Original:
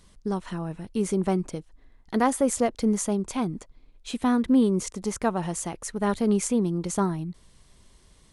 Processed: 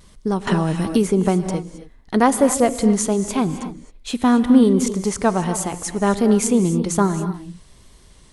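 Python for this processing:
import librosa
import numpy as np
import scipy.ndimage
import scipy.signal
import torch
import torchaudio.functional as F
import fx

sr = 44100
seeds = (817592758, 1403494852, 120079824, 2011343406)

y = fx.vibrato(x, sr, rate_hz=1.3, depth_cents=38.0)
y = fx.rev_gated(y, sr, seeds[0], gate_ms=290, shape='rising', drr_db=10.0)
y = fx.band_squash(y, sr, depth_pct=100, at=(0.47, 1.54))
y = F.gain(torch.from_numpy(y), 7.0).numpy()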